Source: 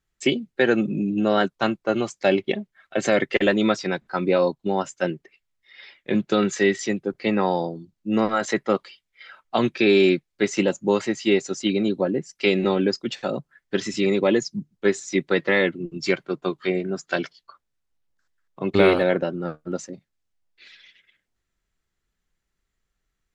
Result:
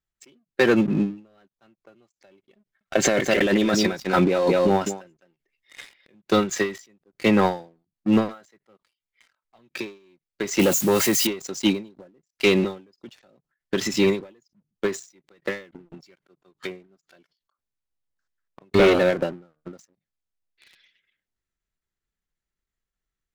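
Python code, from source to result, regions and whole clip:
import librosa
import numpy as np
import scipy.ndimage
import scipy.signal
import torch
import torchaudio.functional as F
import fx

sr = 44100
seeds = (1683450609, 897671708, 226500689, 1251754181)

y = fx.chain(x, sr, fx.echo_single(ms=207, db=-10.0),
    fx.over_compress(threshold_db=-24.0, ratio=-1.0), at=(2.6, 6.14))
y = fx.chain(y, sr, fx.crossing_spikes(level_db=-24.0),
    fx.highpass(hz=48.0, slope=12),
    fx.env_flatten(amount_pct=50), at=(10.59, 11.27))
y = fx.leveller(y, sr, passes=3)
y = fx.rider(y, sr, range_db=3, speed_s=0.5)
y = fx.end_taper(y, sr, db_per_s=150.0)
y = y * 10.0 ** (-6.0 / 20.0)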